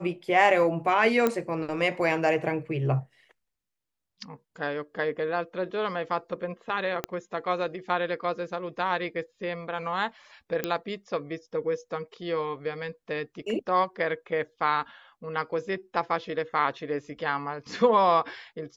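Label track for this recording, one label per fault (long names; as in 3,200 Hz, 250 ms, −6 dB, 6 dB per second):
1.270000	1.270000	click −11 dBFS
7.040000	7.040000	click −13 dBFS
10.640000	10.640000	click −12 dBFS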